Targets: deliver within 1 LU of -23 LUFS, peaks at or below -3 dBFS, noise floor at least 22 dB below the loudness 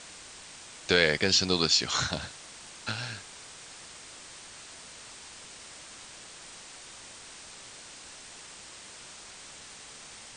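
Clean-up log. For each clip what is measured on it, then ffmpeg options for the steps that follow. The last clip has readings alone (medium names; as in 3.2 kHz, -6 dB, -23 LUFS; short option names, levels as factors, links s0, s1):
noise floor -48 dBFS; noise floor target -49 dBFS; loudness -26.5 LUFS; peak level -6.5 dBFS; loudness target -23.0 LUFS
-> -af "afftdn=nr=6:nf=-48"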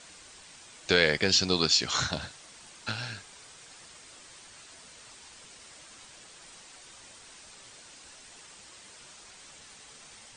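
noise floor -52 dBFS; loudness -26.0 LUFS; peak level -6.5 dBFS; loudness target -23.0 LUFS
-> -af "volume=1.41"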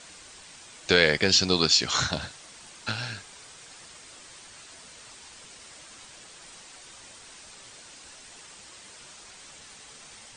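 loudness -23.0 LUFS; peak level -3.5 dBFS; noise floor -49 dBFS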